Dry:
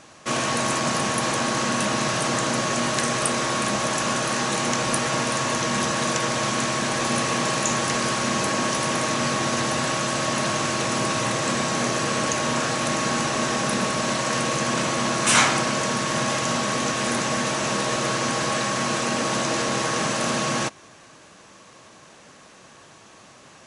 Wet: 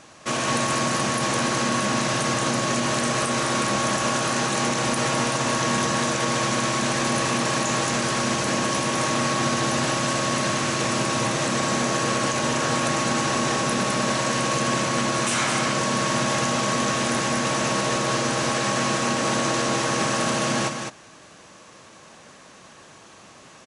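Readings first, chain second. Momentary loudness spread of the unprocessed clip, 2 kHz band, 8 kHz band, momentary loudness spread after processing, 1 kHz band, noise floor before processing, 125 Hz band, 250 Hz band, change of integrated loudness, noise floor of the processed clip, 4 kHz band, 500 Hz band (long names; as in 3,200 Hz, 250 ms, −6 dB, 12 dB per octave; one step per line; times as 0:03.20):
1 LU, 0.0 dB, −0.5 dB, 1 LU, +0.5 dB, −49 dBFS, +1.5 dB, +1.0 dB, 0.0 dB, −48 dBFS, 0.0 dB, +0.5 dB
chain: brickwall limiter −15 dBFS, peak gain reduction 9.5 dB
on a send: single-tap delay 208 ms −5.5 dB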